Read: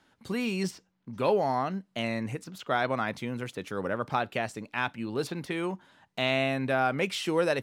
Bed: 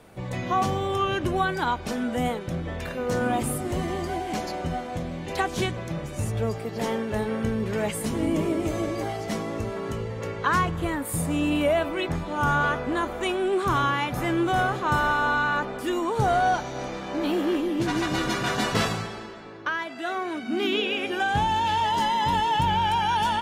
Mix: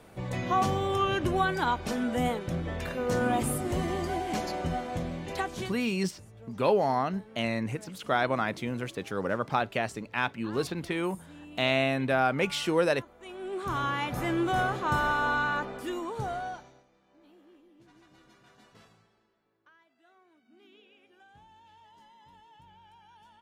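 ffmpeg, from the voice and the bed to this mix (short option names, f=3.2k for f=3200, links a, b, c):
-filter_complex "[0:a]adelay=5400,volume=1dB[a];[1:a]volume=17.5dB,afade=t=out:st=5.07:d=0.84:silence=0.0841395,afade=t=in:st=13.19:d=0.93:silence=0.105925,afade=t=out:st=15.41:d=1.43:silence=0.0334965[b];[a][b]amix=inputs=2:normalize=0"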